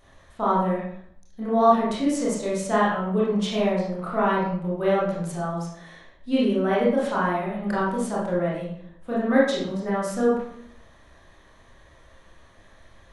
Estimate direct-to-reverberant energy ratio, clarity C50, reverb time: -7.5 dB, 0.5 dB, 0.65 s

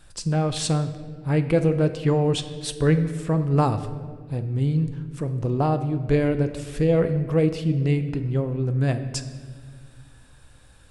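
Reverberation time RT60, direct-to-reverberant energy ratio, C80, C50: 1.8 s, 8.5 dB, 12.5 dB, 11.0 dB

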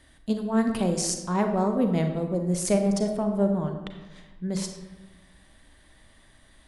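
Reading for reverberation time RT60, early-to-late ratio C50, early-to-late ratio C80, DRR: 1.1 s, 6.5 dB, 8.5 dB, 5.0 dB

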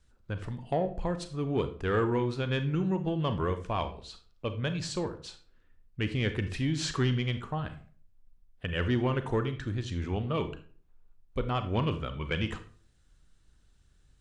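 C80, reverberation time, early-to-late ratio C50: 16.5 dB, 0.45 s, 12.0 dB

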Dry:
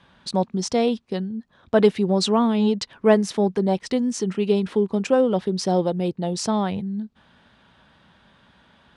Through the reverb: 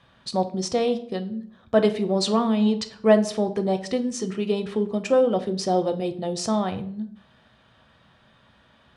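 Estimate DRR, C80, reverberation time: 8.0 dB, 18.0 dB, 0.60 s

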